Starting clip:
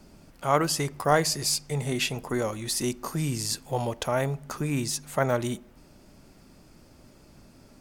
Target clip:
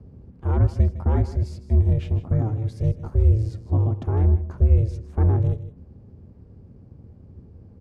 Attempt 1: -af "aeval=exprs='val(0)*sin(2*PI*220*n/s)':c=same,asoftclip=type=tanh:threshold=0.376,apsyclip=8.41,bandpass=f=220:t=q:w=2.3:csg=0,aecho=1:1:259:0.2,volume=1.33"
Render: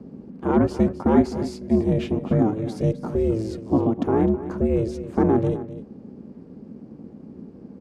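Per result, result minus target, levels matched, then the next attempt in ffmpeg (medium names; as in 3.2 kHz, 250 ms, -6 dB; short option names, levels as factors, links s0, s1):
echo 102 ms late; 250 Hz band +11.0 dB
-af "aeval=exprs='val(0)*sin(2*PI*220*n/s)':c=same,asoftclip=type=tanh:threshold=0.376,apsyclip=8.41,bandpass=f=220:t=q:w=2.3:csg=0,aecho=1:1:157:0.2,volume=1.33"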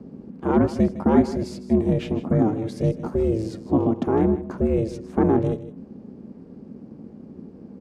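250 Hz band +11.0 dB
-af "aeval=exprs='val(0)*sin(2*PI*220*n/s)':c=same,asoftclip=type=tanh:threshold=0.376,apsyclip=8.41,bandpass=f=90:t=q:w=2.3:csg=0,aecho=1:1:157:0.2,volume=1.33"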